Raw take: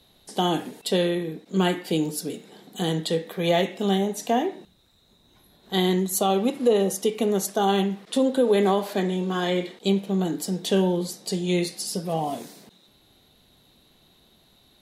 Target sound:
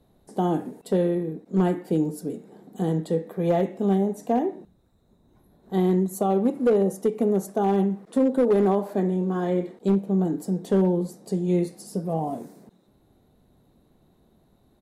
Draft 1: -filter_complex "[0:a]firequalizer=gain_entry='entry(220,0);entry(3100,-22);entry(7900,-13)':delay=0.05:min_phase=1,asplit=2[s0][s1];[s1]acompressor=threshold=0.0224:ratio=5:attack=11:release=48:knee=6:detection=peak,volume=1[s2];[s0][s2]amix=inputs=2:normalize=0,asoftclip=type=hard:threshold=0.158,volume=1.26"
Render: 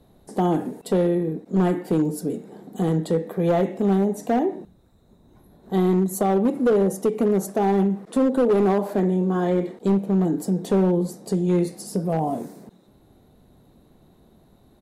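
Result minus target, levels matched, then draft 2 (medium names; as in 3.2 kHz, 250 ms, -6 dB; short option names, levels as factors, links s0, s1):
compression: peak gain reduction +14.5 dB
-af "firequalizer=gain_entry='entry(220,0);entry(3100,-22);entry(7900,-13)':delay=0.05:min_phase=1,asoftclip=type=hard:threshold=0.158,volume=1.26"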